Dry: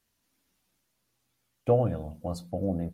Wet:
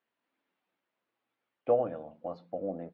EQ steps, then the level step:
band-pass filter 380–3,300 Hz
high-frequency loss of the air 290 metres
0.0 dB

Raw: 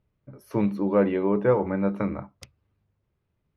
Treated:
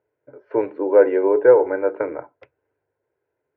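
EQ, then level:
loudspeaker in its box 260–2,100 Hz, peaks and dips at 450 Hz +6 dB, 1,000 Hz +4 dB, 1,500 Hz +10 dB
parametric band 1,100 Hz +11 dB 0.49 octaves
phaser with its sweep stopped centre 480 Hz, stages 4
+6.0 dB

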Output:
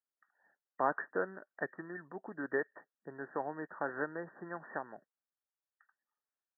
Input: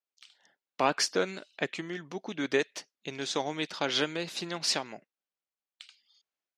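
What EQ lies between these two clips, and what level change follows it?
linear-phase brick-wall low-pass 1,900 Hz
low-shelf EQ 450 Hz −8 dB
−2.5 dB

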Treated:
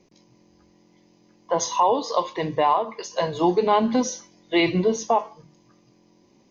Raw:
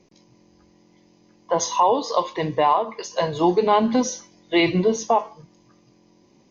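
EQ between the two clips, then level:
mains-hum notches 50/100/150 Hz
−1.5 dB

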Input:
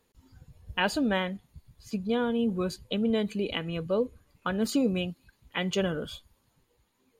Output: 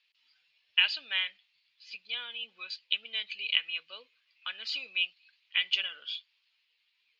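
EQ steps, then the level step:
high-pass with resonance 2,600 Hz, resonance Q 3.5
low-pass with resonance 4,900 Hz, resonance Q 3
high-frequency loss of the air 220 metres
0.0 dB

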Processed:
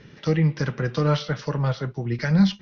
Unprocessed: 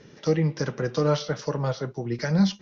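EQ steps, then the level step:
low-pass filter 3,100 Hz 12 dB per octave
parametric band 510 Hz −10.5 dB 2.9 octaves
+8.5 dB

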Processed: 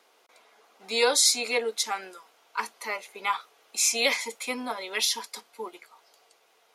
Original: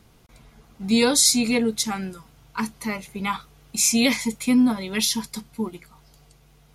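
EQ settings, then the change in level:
high-pass filter 450 Hz 24 dB per octave
high-shelf EQ 6,900 Hz −7.5 dB
0.0 dB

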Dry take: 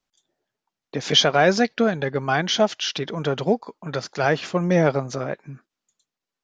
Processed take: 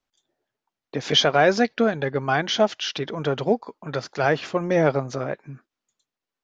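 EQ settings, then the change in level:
parametric band 180 Hz −8.5 dB 0.22 octaves
high-shelf EQ 5,700 Hz −8 dB
0.0 dB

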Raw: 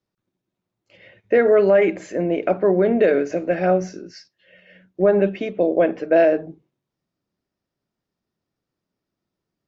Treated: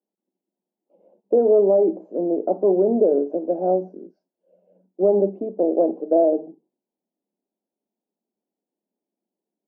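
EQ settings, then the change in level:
elliptic band-pass filter 210–860 Hz, stop band 40 dB
dynamic equaliser 340 Hz, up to +3 dB, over −28 dBFS, Q 1.9
−2.0 dB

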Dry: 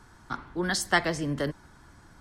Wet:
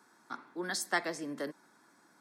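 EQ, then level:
high-pass filter 220 Hz 24 dB per octave
high-shelf EQ 11,000 Hz +7.5 dB
notch filter 3,000 Hz, Q 6.8
−7.5 dB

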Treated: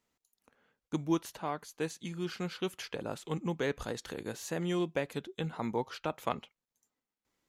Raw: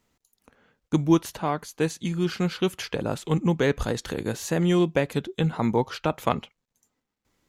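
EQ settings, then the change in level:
low-shelf EQ 190 Hz −8 dB
−8.5 dB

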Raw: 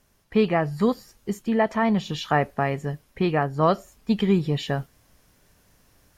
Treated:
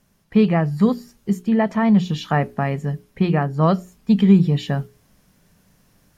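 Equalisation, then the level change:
parametric band 180 Hz +11 dB 0.78 octaves
mains-hum notches 60/120/180/240/300/360/420 Hz
0.0 dB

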